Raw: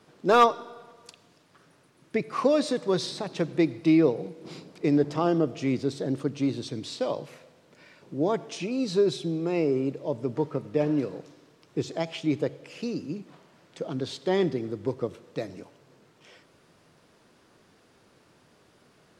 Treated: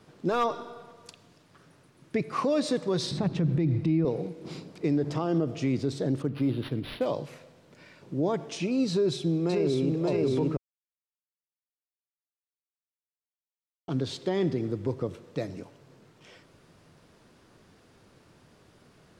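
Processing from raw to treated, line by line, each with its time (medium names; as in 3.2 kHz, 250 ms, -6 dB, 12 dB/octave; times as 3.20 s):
3.11–4.05 s: tone controls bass +14 dB, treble -7 dB
6.22–7.06 s: decimation joined by straight lines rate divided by 6×
8.91–10.00 s: echo throw 580 ms, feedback 60%, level -1.5 dB
10.57–13.88 s: mute
whole clip: bass shelf 140 Hz +10 dB; peak limiter -18 dBFS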